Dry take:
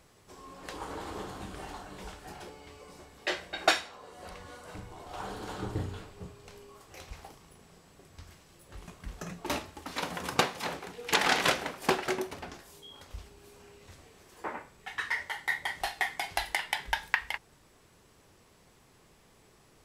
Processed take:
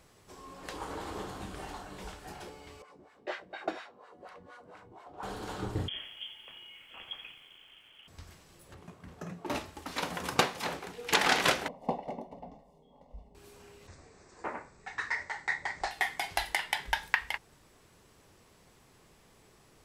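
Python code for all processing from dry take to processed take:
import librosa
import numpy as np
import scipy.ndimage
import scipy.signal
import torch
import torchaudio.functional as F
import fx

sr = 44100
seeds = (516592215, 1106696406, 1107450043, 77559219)

y = fx.chain(x, sr, fx.high_shelf(hz=5500.0, db=6.5),
    fx.filter_lfo_bandpass(shape='sine', hz=4.2, low_hz=210.0, high_hz=1600.0, q=1.3), at=(2.82, 5.23))
y = fx.chain(y, sr, fx.freq_invert(carrier_hz=3300),
    fx.echo_crushed(ms=86, feedback_pct=55, bits=10, wet_db=-12), at=(5.88, 8.08))
y = fx.chain(y, sr, fx.highpass(hz=88.0, slope=24),
    fx.high_shelf(hz=2000.0, db=-10.5), at=(8.74, 9.55))
y = fx.chain(y, sr, fx.savgol(points=65),
    fx.fixed_phaser(hz=360.0, stages=6), at=(11.68, 13.35))
y = fx.chain(y, sr, fx.steep_lowpass(hz=8500.0, slope=96),
    fx.peak_eq(hz=3100.0, db=-15.0, octaves=0.36),
    fx.doppler_dist(depth_ms=0.25), at=(13.87, 15.91))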